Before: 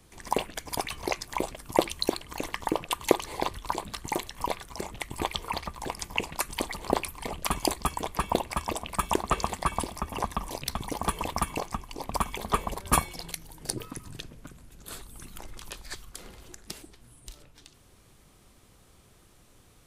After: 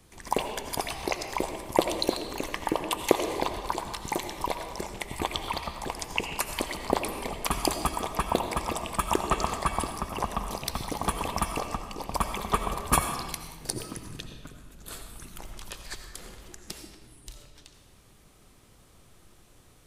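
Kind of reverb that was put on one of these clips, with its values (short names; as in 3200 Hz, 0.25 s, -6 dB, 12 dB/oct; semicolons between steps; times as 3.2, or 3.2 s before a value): digital reverb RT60 1.3 s, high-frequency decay 0.8×, pre-delay 45 ms, DRR 6 dB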